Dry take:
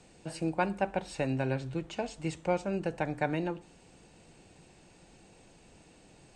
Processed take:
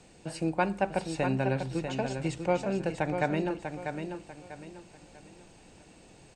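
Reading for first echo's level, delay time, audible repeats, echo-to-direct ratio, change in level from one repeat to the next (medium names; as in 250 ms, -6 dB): -7.0 dB, 644 ms, 3, -6.5 dB, -10.0 dB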